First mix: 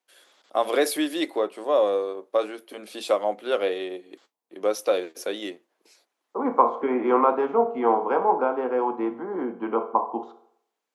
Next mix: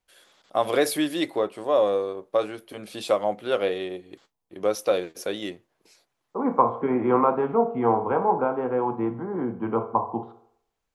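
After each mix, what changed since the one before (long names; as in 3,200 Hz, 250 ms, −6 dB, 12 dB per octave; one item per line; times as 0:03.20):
second voice: add high-frequency loss of the air 280 metres
master: remove high-pass filter 250 Hz 24 dB per octave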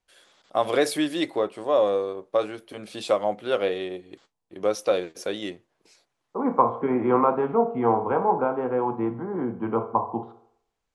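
first voice: add low-pass filter 10,000 Hz 24 dB per octave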